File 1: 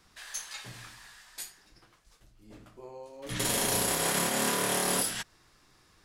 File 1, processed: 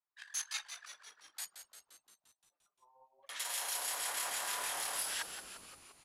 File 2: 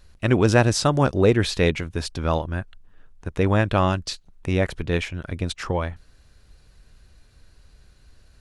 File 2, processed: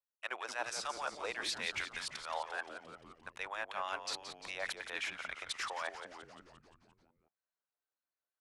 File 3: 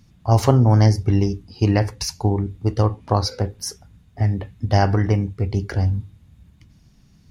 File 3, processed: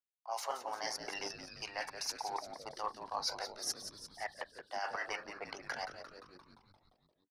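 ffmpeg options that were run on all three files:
-filter_complex "[0:a]highpass=f=750:w=0.5412,highpass=f=750:w=1.3066,anlmdn=0.158,areverse,acompressor=threshold=0.01:ratio=6,areverse,acrossover=split=1500[s0][s1];[s0]aeval=exprs='val(0)*(1-0.5/2+0.5/2*cos(2*PI*6.3*n/s))':c=same[s2];[s1]aeval=exprs='val(0)*(1-0.5/2-0.5/2*cos(2*PI*6.3*n/s))':c=same[s3];[s2][s3]amix=inputs=2:normalize=0,asplit=2[s4][s5];[s5]asoftclip=type=tanh:threshold=0.0119,volume=0.251[s6];[s4][s6]amix=inputs=2:normalize=0,asplit=9[s7][s8][s9][s10][s11][s12][s13][s14][s15];[s8]adelay=174,afreqshift=-130,volume=0.335[s16];[s9]adelay=348,afreqshift=-260,volume=0.211[s17];[s10]adelay=522,afreqshift=-390,volume=0.133[s18];[s11]adelay=696,afreqshift=-520,volume=0.0841[s19];[s12]adelay=870,afreqshift=-650,volume=0.0525[s20];[s13]adelay=1044,afreqshift=-780,volume=0.0331[s21];[s14]adelay=1218,afreqshift=-910,volume=0.0209[s22];[s15]adelay=1392,afreqshift=-1040,volume=0.0132[s23];[s7][s16][s17][s18][s19][s20][s21][s22][s23]amix=inputs=9:normalize=0,aresample=32000,aresample=44100,volume=1.58"

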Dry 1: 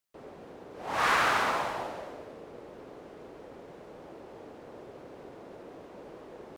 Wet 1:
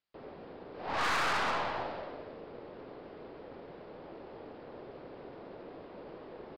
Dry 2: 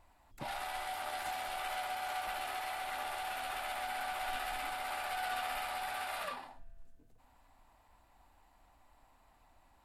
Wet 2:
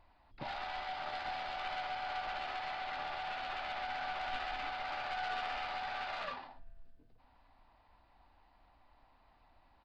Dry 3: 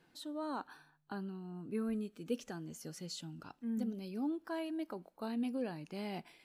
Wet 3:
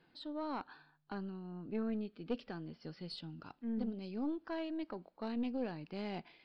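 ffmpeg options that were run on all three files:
-af "aresample=11025,aresample=44100,aeval=exprs='(tanh(28.2*val(0)+0.5)-tanh(0.5))/28.2':c=same,volume=1.19"

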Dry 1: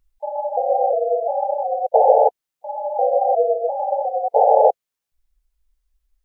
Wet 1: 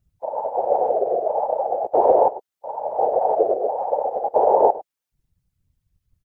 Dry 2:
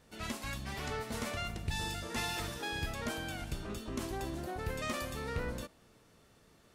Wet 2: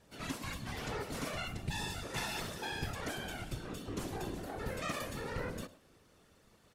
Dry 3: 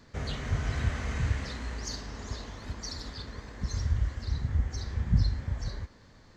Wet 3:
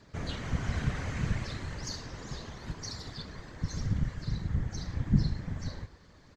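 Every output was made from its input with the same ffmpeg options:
-filter_complex "[0:a]asplit=2[s0][s1];[s1]adelay=105,volume=0.141,highshelf=f=4000:g=-2.36[s2];[s0][s2]amix=inputs=2:normalize=0,afftfilt=real='hypot(re,im)*cos(2*PI*random(0))':imag='hypot(re,im)*sin(2*PI*random(1))':win_size=512:overlap=0.75,volume=1.68"

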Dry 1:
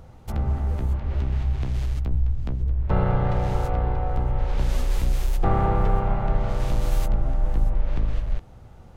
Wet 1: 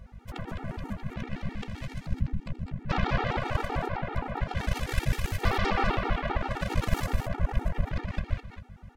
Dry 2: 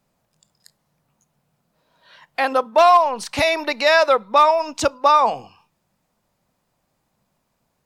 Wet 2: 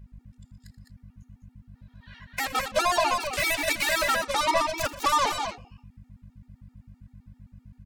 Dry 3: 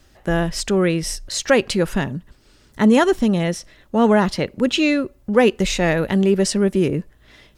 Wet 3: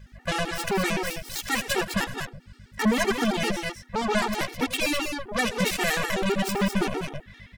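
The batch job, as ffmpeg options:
-af "equalizer=f=1900:w=0.91:g=10.5,alimiter=limit=0.398:level=0:latency=1:release=110,aeval=exprs='0.398*(cos(1*acos(clip(val(0)/0.398,-1,1)))-cos(1*PI/2))+0.0224*(cos(6*acos(clip(val(0)/0.398,-1,1)))-cos(6*PI/2))+0.112*(cos(7*acos(clip(val(0)/0.398,-1,1)))-cos(7*PI/2))+0.0316*(cos(8*acos(clip(val(0)/0.398,-1,1)))-cos(8*PI/2))':c=same,aeval=exprs='val(0)+0.0112*(sin(2*PI*50*n/s)+sin(2*PI*2*50*n/s)/2+sin(2*PI*3*50*n/s)/3+sin(2*PI*4*50*n/s)/4+sin(2*PI*5*50*n/s)/5)':c=same,aecho=1:1:81|119|195|209:0.158|0.112|0.178|0.501,afftfilt=real='re*gt(sin(2*PI*7.7*pts/sr)*(1-2*mod(floor(b*sr/1024/240),2)),0)':imag='im*gt(sin(2*PI*7.7*pts/sr)*(1-2*mod(floor(b*sr/1024/240),2)),0)':win_size=1024:overlap=0.75,volume=0.562"

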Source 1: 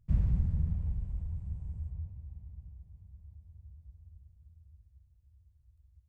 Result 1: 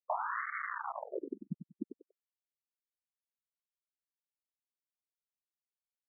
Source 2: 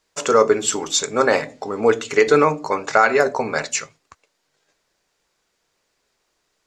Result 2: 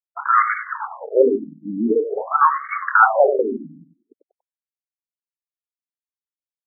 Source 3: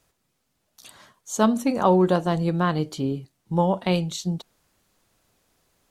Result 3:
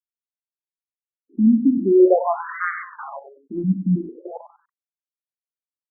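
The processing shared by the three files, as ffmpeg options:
-af "aeval=exprs='0.447*(abs(mod(val(0)/0.447+3,4)-2)-1)':c=same,acrusher=bits=4:mix=0:aa=0.000001,aecho=1:1:95|190|285:0.316|0.0854|0.0231,afftfilt=real='re*between(b*sr/1024,220*pow(1600/220,0.5+0.5*sin(2*PI*0.46*pts/sr))/1.41,220*pow(1600/220,0.5+0.5*sin(2*PI*0.46*pts/sr))*1.41)':imag='im*between(b*sr/1024,220*pow(1600/220,0.5+0.5*sin(2*PI*0.46*pts/sr))/1.41,220*pow(1600/220,0.5+0.5*sin(2*PI*0.46*pts/sr))*1.41)':win_size=1024:overlap=0.75,volume=2.24"

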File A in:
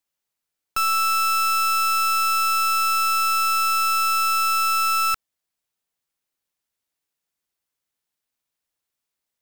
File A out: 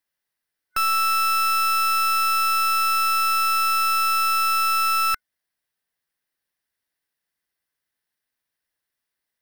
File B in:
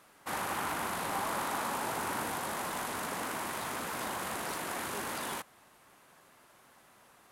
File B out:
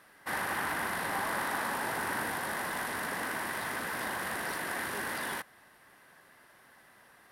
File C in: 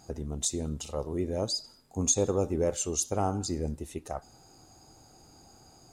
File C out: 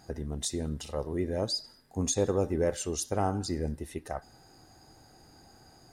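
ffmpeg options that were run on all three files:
-af "superequalizer=11b=2.24:15b=0.501"

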